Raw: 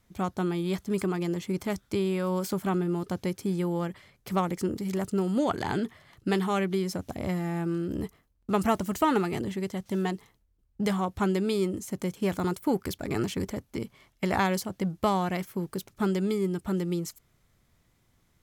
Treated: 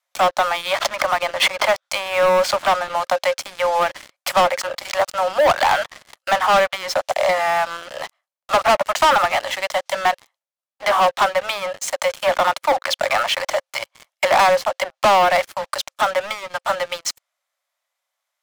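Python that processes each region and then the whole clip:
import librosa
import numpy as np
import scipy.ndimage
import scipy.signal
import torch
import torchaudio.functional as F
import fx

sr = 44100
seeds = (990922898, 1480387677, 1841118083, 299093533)

y = fx.chain(x, sr, fx.air_absorb(metres=120.0),
    fx.pre_swell(db_per_s=57.0), at=(0.78, 1.69))
y = fx.env_lowpass_down(y, sr, base_hz=1800.0, full_db=-22.5)
y = scipy.signal.sosfilt(scipy.signal.cheby1(10, 1.0, 530.0, 'highpass', fs=sr, output='sos'), y)
y = fx.leveller(y, sr, passes=5)
y = y * 10.0 ** (4.5 / 20.0)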